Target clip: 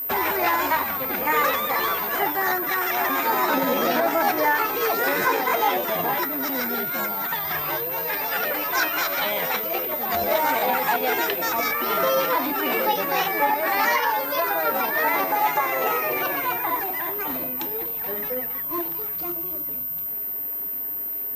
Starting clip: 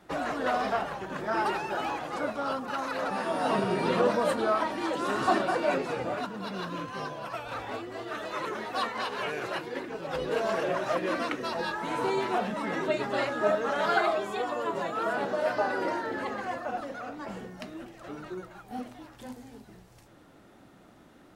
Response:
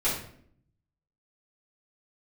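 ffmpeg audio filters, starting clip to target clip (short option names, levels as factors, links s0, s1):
-af "aeval=exprs='val(0)+0.02*sin(2*PI*9900*n/s)':c=same,alimiter=limit=0.133:level=0:latency=1:release=359,asetrate=60591,aresample=44100,atempo=0.727827,volume=2.37"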